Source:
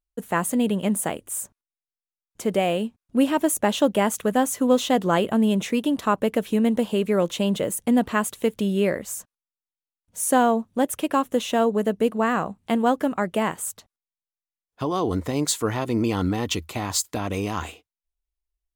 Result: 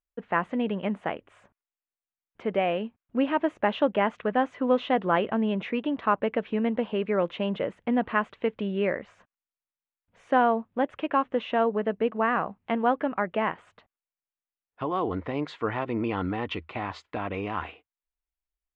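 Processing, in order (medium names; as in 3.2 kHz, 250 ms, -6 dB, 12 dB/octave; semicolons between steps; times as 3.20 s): low-pass 2.6 kHz 24 dB/octave; bass shelf 420 Hz -8.5 dB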